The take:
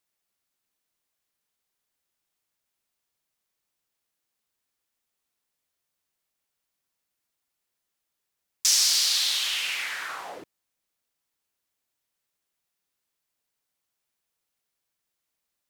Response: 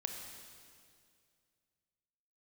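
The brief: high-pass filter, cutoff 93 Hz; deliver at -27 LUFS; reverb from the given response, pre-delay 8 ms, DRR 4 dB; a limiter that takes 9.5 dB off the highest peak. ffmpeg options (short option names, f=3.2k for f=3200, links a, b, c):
-filter_complex "[0:a]highpass=93,alimiter=limit=-18dB:level=0:latency=1,asplit=2[a][b];[1:a]atrim=start_sample=2205,adelay=8[c];[b][c]afir=irnorm=-1:irlink=0,volume=-4dB[d];[a][d]amix=inputs=2:normalize=0,volume=-1.5dB"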